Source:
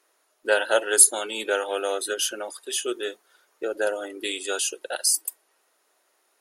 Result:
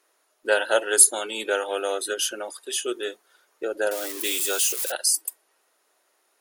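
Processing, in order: 3.91–4.92 s: zero-crossing glitches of -20.5 dBFS

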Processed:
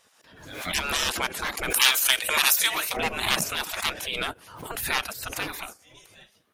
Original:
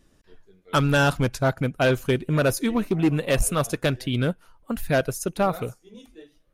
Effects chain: spectral gate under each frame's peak -20 dB weak; 1.70–2.97 s: tilt EQ +4 dB/octave; swell ahead of each attack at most 64 dB/s; trim +7.5 dB

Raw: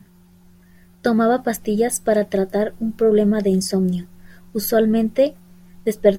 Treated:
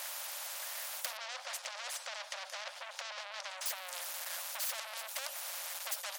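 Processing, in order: compression, threshold -25 dBFS, peak gain reduction 16.5 dB; peak limiter -21.5 dBFS, peak gain reduction 9 dB; saturation -39 dBFS, distortion -5 dB; 1.17–3.66 s: distance through air 120 m; brick-wall FIR high-pass 530 Hz; spectrum-flattening compressor 4:1; trim +14.5 dB

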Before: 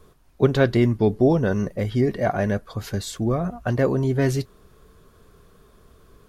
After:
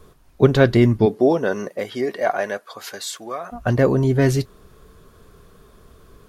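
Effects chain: 1.05–3.51 s: high-pass 280 Hz -> 900 Hz 12 dB/octave; trim +4 dB

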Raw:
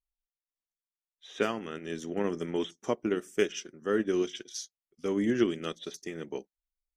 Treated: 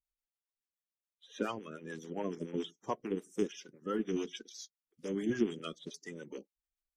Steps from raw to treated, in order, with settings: coarse spectral quantiser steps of 30 dB; harmonic tremolo 7 Hz, depth 70%, crossover 480 Hz; trim -2.5 dB

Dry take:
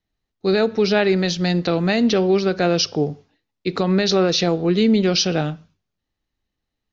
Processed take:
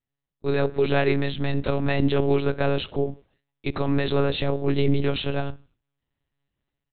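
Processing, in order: level rider gain up to 8 dB; monotone LPC vocoder at 8 kHz 140 Hz; trim -9 dB

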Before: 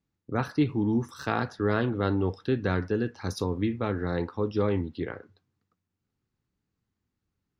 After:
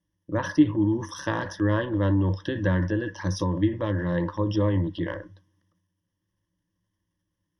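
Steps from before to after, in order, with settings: transient shaper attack +3 dB, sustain +8 dB; rippled EQ curve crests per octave 1.2, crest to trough 17 dB; low-pass that closes with the level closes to 2.8 kHz, closed at -16 dBFS; trim -2.5 dB

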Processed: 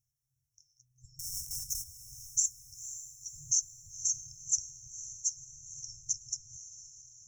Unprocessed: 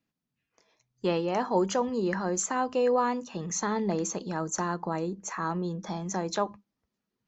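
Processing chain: 1.19–1.84 s: square wave that keeps the level; peaking EQ 4.5 kHz +10.5 dB 0.42 oct; compression, threshold -29 dBFS, peak gain reduction 12 dB; on a send: echo that smears into a reverb 514 ms, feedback 53%, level -12 dB; on the sum: FFT band-reject 140–5300 Hz; trim +6 dB

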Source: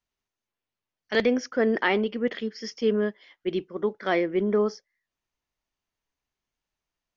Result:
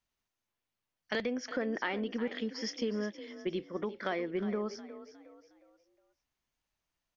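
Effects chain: peaking EQ 410 Hz -4.5 dB 0.28 oct; compression, threshold -31 dBFS, peak gain reduction 12.5 dB; on a send: frequency-shifting echo 361 ms, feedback 37%, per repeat +36 Hz, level -13.5 dB

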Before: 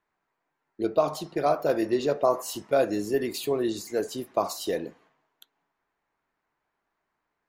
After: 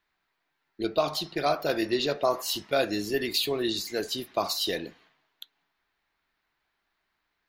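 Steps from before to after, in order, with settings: graphic EQ 125/250/500/1000/4000/8000 Hz -6/-5/-8/-6/+8/-8 dB; trim +5.5 dB

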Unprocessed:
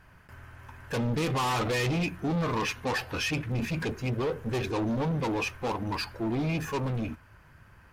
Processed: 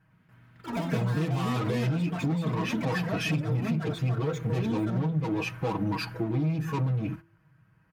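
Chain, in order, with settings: treble shelf 6.8 kHz +9 dB; comb 6.3 ms, depth 93%; gate -42 dBFS, range -15 dB; ever faster or slower copies 105 ms, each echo +6 st, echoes 3, each echo -6 dB; high-pass 120 Hz 12 dB/octave; tone controls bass +13 dB, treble -10 dB; compression, threshold -25 dBFS, peak gain reduction 12.5 dB; de-hum 166.8 Hz, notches 2

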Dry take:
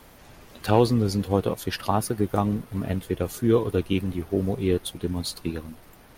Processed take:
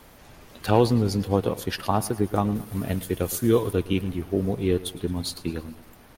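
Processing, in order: 2.55–3.73 s: treble shelf 4.9 kHz +10.5 dB; feedback delay 110 ms, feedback 51%, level -18 dB

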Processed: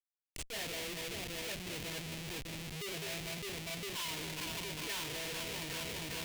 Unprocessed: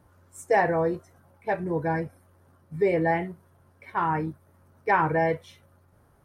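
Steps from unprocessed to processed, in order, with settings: band-stop 800 Hz, Q 5.2; random-step tremolo; 1.97–4.08 s: rippled EQ curve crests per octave 1.5, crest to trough 13 dB; echo whose repeats swap between lows and highs 202 ms, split 930 Hz, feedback 78%, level -6.5 dB; compression 2:1, threshold -39 dBFS, peak gain reduction 14 dB; high-pass 90 Hz 6 dB/octave; Schmitt trigger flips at -42.5 dBFS; peak limiter -43 dBFS, peak gain reduction 11.5 dB; resonant high shelf 1.8 kHz +10 dB, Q 1.5

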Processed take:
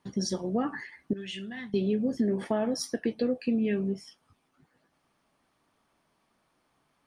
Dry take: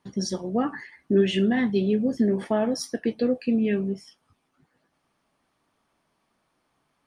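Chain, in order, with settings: 1.13–1.74 s: amplifier tone stack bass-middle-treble 5-5-5; compression 2:1, threshold -27 dBFS, peak gain reduction 5.5 dB

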